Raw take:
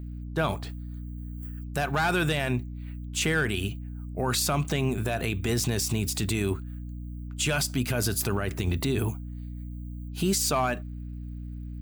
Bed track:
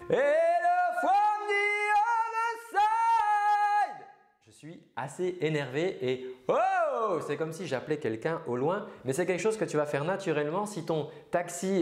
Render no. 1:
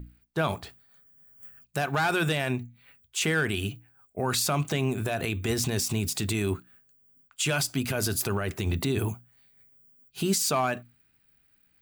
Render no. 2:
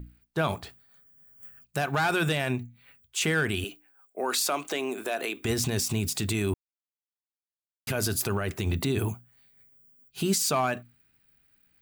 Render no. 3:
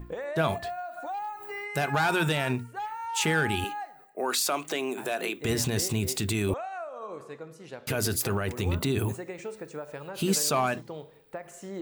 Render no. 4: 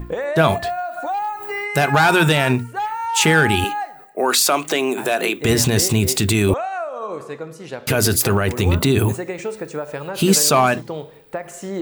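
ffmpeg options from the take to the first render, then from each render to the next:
-af "bandreject=f=60:t=h:w=6,bandreject=f=120:t=h:w=6,bandreject=f=180:t=h:w=6,bandreject=f=240:t=h:w=6,bandreject=f=300:t=h:w=6"
-filter_complex "[0:a]asettb=1/sr,asplit=3[s0][s1][s2];[s0]atrim=end=3.644[s3];[s1]atrim=start=3.64:end=5.45,asetpts=PTS-STARTPTS,afade=t=in:d=0.004:c=qsin,afade=t=out:st=1.806:d=0.004:c=qsin,highpass=f=290:w=0.5412,highpass=f=290:w=1.3066[s4];[s2]atrim=start=5.446[s5];[s3][s4]acrossfade=d=0.004:c1=hsin:c2=qsin[s6];[s6][s5]acrossfade=d=0.004:c1=qsin:c2=hsin,asplit=3[s7][s8][s9];[s7]atrim=end=6.54,asetpts=PTS-STARTPTS,afade=t=out:st=6.536:d=0.004:c=hsin[s10];[s8]atrim=start=6.54:end=7.87,asetpts=PTS-STARTPTS,volume=0[s11];[s9]atrim=start=7.87,asetpts=PTS-STARTPTS,afade=t=in:d=0.004:c=hsin[s12];[s10][s11][s12]concat=n=3:v=0:a=1"
-filter_complex "[1:a]volume=0.316[s0];[0:a][s0]amix=inputs=2:normalize=0"
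-af "volume=3.55"

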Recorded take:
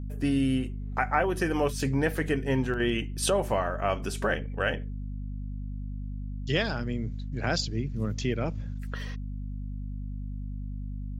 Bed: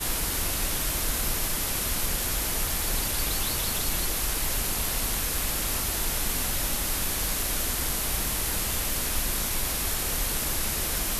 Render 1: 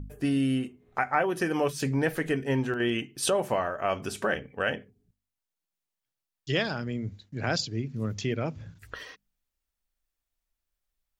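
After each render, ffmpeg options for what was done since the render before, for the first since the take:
-af "bandreject=f=50:t=h:w=4,bandreject=f=100:t=h:w=4,bandreject=f=150:t=h:w=4,bandreject=f=200:t=h:w=4,bandreject=f=250:t=h:w=4"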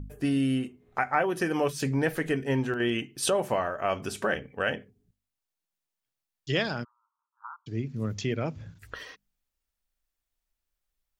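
-filter_complex "[0:a]asplit=3[s0][s1][s2];[s0]afade=t=out:st=6.83:d=0.02[s3];[s1]asuperpass=centerf=1100:order=12:qfactor=2.3,afade=t=in:st=6.83:d=0.02,afade=t=out:st=7.66:d=0.02[s4];[s2]afade=t=in:st=7.66:d=0.02[s5];[s3][s4][s5]amix=inputs=3:normalize=0"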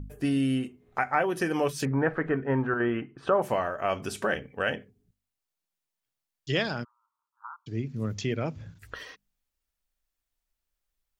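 -filter_complex "[0:a]asettb=1/sr,asplit=3[s0][s1][s2];[s0]atrim=end=1.854[s3];[s1]atrim=start=1.85:end=3.42,asetpts=PTS-STARTPTS,afade=t=in:d=0.004:c=qsin,afade=t=out:st=1.566:d=0.004:c=qsin,lowpass=f=1300:t=q:w=2.5[s4];[s2]atrim=start=3.416[s5];[s3][s4]acrossfade=d=0.004:c1=hsin:c2=qsin[s6];[s6][s5]acrossfade=d=0.004:c1=qsin:c2=hsin"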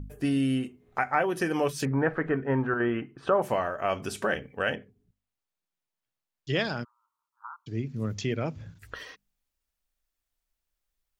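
-filter_complex "[0:a]asettb=1/sr,asplit=3[s0][s1][s2];[s0]atrim=end=4.754[s3];[s1]atrim=start=4.75:end=6.59,asetpts=PTS-STARTPTS,afade=t=in:d=0.004:c=qsin,afade=t=out:st=1.836:d=0.004:c=qsin,highshelf=f=4200:g=-7[s4];[s2]atrim=start=6.586[s5];[s3][s4]acrossfade=d=0.004:c1=hsin:c2=qsin[s6];[s6][s5]acrossfade=d=0.004:c1=qsin:c2=hsin"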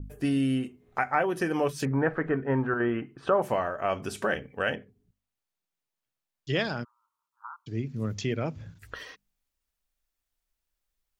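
-af "adynamicequalizer=threshold=0.0112:dfrequency=2100:dqfactor=0.7:tfrequency=2100:tqfactor=0.7:attack=5:release=100:ratio=0.375:range=2.5:mode=cutabove:tftype=highshelf"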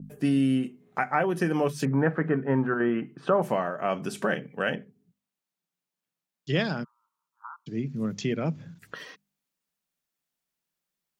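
-af "highpass=44,lowshelf=f=110:t=q:w=3:g=-13.5"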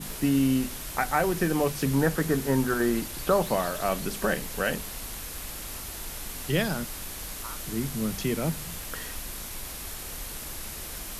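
-filter_complex "[1:a]volume=0.335[s0];[0:a][s0]amix=inputs=2:normalize=0"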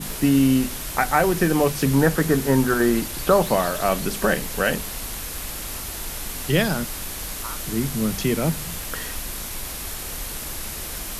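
-af "volume=2"

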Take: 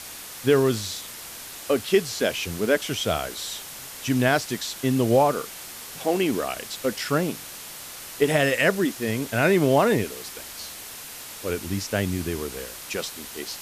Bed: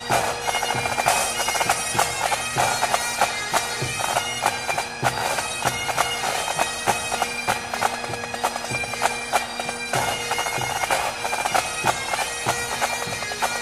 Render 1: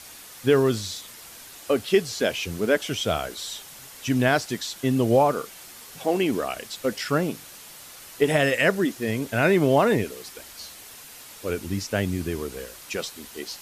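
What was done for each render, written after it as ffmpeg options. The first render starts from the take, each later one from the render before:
-af "afftdn=nr=6:nf=-39"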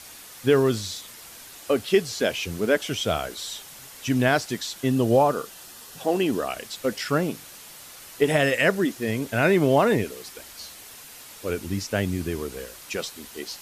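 -filter_complex "[0:a]asettb=1/sr,asplit=3[s0][s1][s2];[s0]atrim=end=4.914[s3];[s1]atrim=start=4.91:end=6.47,asetpts=PTS-STARTPTS,afade=t=in:d=0.004:c=qsin,afade=t=out:st=1.556:d=0.004:c=qsin,bandreject=f=2200:w=7[s4];[s2]atrim=start=6.466[s5];[s3][s4]acrossfade=d=0.004:c1=hsin:c2=qsin[s6];[s6][s5]acrossfade=d=0.004:c1=qsin:c2=hsin"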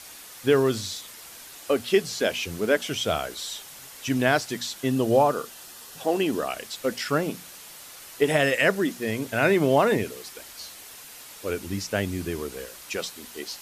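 -af "lowshelf=f=250:g=-3.5,bandreject=f=60:t=h:w=6,bandreject=f=120:t=h:w=6,bandreject=f=180:t=h:w=6,bandreject=f=240:t=h:w=6"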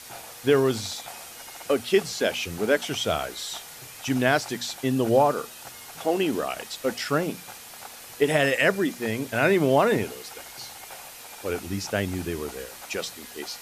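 -filter_complex "[1:a]volume=0.075[s0];[0:a][s0]amix=inputs=2:normalize=0"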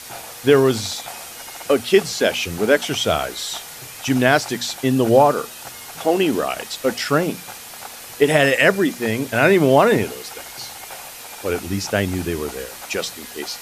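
-af "volume=2.11,alimiter=limit=0.891:level=0:latency=1"

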